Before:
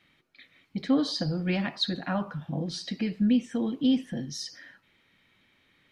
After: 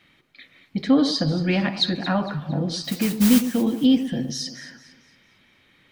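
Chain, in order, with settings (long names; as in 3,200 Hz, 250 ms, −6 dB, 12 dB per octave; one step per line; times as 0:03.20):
0:02.84–0:03.46: noise that follows the level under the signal 11 dB
delay that swaps between a low-pass and a high-pass 114 ms, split 1,000 Hz, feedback 61%, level −10 dB
level +6.5 dB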